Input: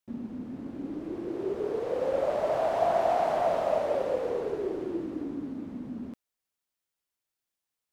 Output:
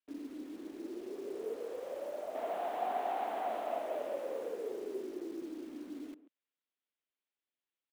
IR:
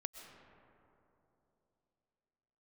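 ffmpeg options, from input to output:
-filter_complex "[0:a]asettb=1/sr,asplit=3[link_01][link_02][link_03];[link_01]atrim=end=1.564[link_04];[link_02]atrim=start=1.56:end=2.35,asetpts=PTS-STARTPTS,afade=type=in:duration=0.004:curve=qsin,afade=type=out:start_time=0.786:duration=0.004:curve=qsin,acrossover=split=340|850[link_05][link_06][link_07];[link_05]acompressor=threshold=-45dB:ratio=4[link_08];[link_06]acompressor=threshold=-31dB:ratio=4[link_09];[link_07]acompressor=threshold=-46dB:ratio=4[link_10];[link_08][link_09][link_10]amix=inputs=3:normalize=0[link_11];[link_03]atrim=start=2.346[link_12];[link_04][link_11]acrossfade=duration=0.004:curve1=hsin:curve2=qsin[link_13];[link_13][link_12]acrossfade=duration=0.004:curve1=qsin:curve2=hsin,equalizer=frequency=870:width_type=o:width=2:gain=-5.5,asplit=2[link_14][link_15];[link_15]aecho=0:1:136:0.133[link_16];[link_14][link_16]amix=inputs=2:normalize=0,highpass=frequency=180:width_type=q:width=0.5412,highpass=frequency=180:width_type=q:width=1.307,lowpass=frequency=3600:width_type=q:width=0.5176,lowpass=frequency=3600:width_type=q:width=0.7071,lowpass=frequency=3600:width_type=q:width=1.932,afreqshift=52,asplit=2[link_17][link_18];[link_18]aeval=exprs='(mod(224*val(0)+1,2)-1)/224':channel_layout=same,volume=-7dB[link_19];[link_17][link_19]amix=inputs=2:normalize=0,volume=-5.5dB"

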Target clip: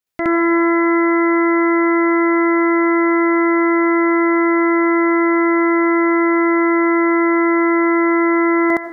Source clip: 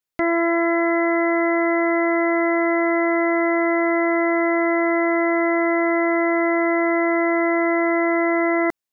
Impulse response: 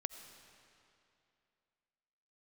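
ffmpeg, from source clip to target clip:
-filter_complex "[0:a]asplit=2[link_01][link_02];[1:a]atrim=start_sample=2205,adelay=66[link_03];[link_02][link_03]afir=irnorm=-1:irlink=0,volume=6dB[link_04];[link_01][link_04]amix=inputs=2:normalize=0"

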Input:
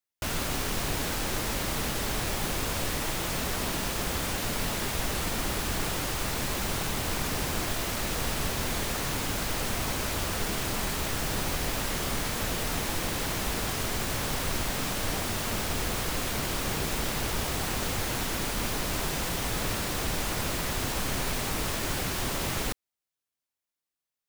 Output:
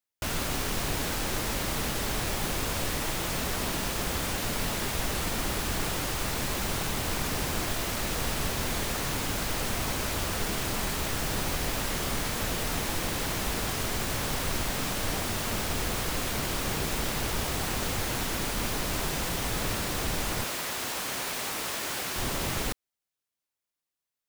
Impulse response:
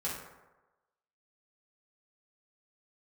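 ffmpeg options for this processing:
-filter_complex "[0:a]asettb=1/sr,asplit=3[link_01][link_02][link_03];[link_01]atrim=end=20.444[link_04];[link_02]atrim=start=20.44:end=22.16,asetpts=PTS-STARTPTS,afade=type=in:duration=0.004:curve=qsin,afade=type=out:start_time=1.716:duration=0.004:curve=qsin,highpass=frequency=540:poles=1[link_05];[link_03]atrim=start=22.156[link_06];[link_04][link_05]acrossfade=duration=0.004:curve1=hsin:curve2=qsin[link_07];[link_07][link_06]acrossfade=duration=0.004:curve1=qsin:curve2=hsin"

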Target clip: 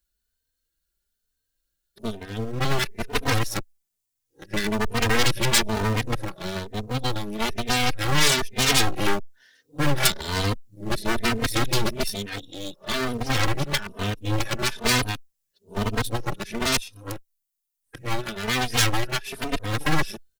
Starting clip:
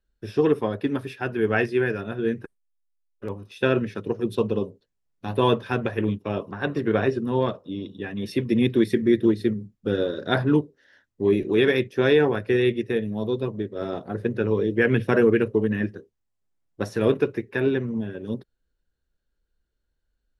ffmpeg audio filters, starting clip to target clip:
ffmpeg -i in.wav -filter_complex "[0:a]areverse,aeval=exprs='0.473*(cos(1*acos(clip(val(0)/0.473,-1,1)))-cos(1*PI/2))+0.168*(cos(8*acos(clip(val(0)/0.473,-1,1)))-cos(8*PI/2))':channel_layout=same,acrossover=split=270[link_01][link_02];[link_02]aeval=exprs='clip(val(0),-1,0.0422)':channel_layout=same[link_03];[link_01][link_03]amix=inputs=2:normalize=0,crystalizer=i=7.5:c=0,asplit=2[link_04][link_05];[link_05]adelay=3.1,afreqshift=1.1[link_06];[link_04][link_06]amix=inputs=2:normalize=1,volume=-4dB" out.wav

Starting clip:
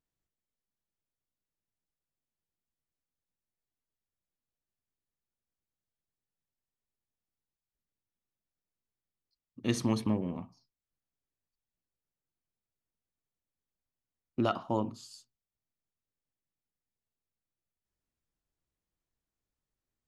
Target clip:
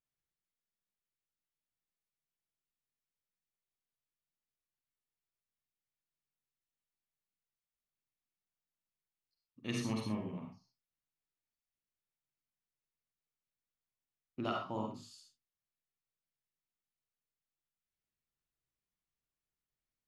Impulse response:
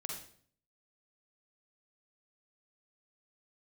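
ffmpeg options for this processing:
-filter_complex "[0:a]equalizer=frequency=2300:width=0.7:gain=6[link_01];[1:a]atrim=start_sample=2205,atrim=end_sample=6174[link_02];[link_01][link_02]afir=irnorm=-1:irlink=0,volume=-7dB"

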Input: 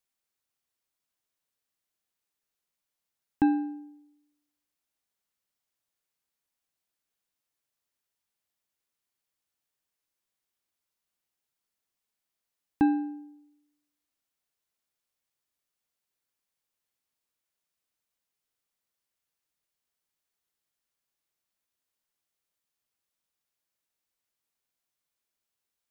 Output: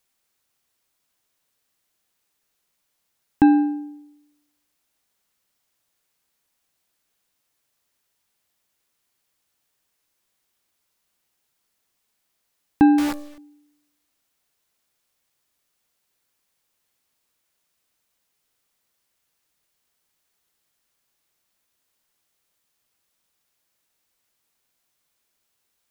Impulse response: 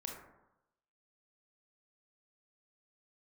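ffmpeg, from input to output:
-filter_complex "[0:a]asplit=2[link_01][link_02];[link_02]alimiter=limit=-23.5dB:level=0:latency=1:release=89,volume=-0.5dB[link_03];[link_01][link_03]amix=inputs=2:normalize=0,asettb=1/sr,asplit=3[link_04][link_05][link_06];[link_04]atrim=end=12.984[link_07];[link_05]atrim=start=12.98:end=13.38,asetpts=PTS-STARTPTS,afade=type=in:duration=0.004:curve=qsin,afade=type=out:start_time=0.396:duration=0.004:curve=qsin,acrusher=bits=6:dc=4:mix=0:aa=0.000001[link_08];[link_06]atrim=start=13.376[link_09];[link_07][link_08]acrossfade=duration=0.004:curve1=hsin:curve2=qsin[link_10];[link_10][link_09]acrossfade=duration=0.004:curve1=qsin:curve2=hsin,volume=6dB"

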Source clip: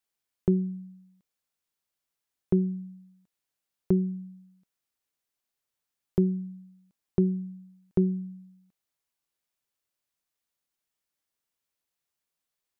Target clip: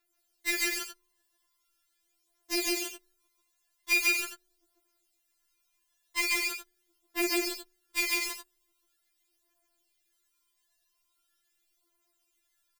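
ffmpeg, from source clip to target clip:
ffmpeg -i in.wav -af "aeval=exprs='(mod(28.2*val(0)+1,2)-1)/28.2':channel_layout=same,aphaser=in_gain=1:out_gain=1:delay=1.2:decay=0.7:speed=0.42:type=triangular,aecho=1:1:142.9|233.2:0.891|0.355,afftfilt=real='re*4*eq(mod(b,16),0)':imag='im*4*eq(mod(b,16),0)':win_size=2048:overlap=0.75,volume=7dB" out.wav

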